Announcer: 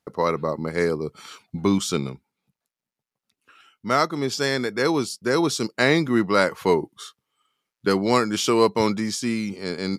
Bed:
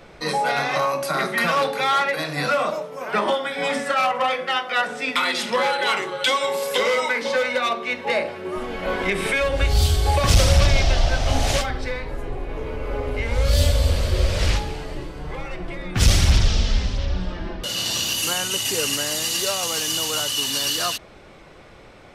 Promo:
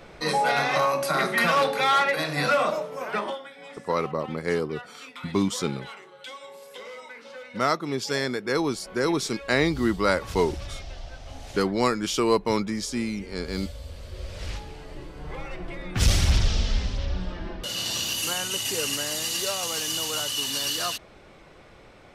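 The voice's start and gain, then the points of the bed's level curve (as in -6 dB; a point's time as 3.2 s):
3.70 s, -3.5 dB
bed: 3.01 s -1 dB
3.61 s -20.5 dB
13.88 s -20.5 dB
15.33 s -4.5 dB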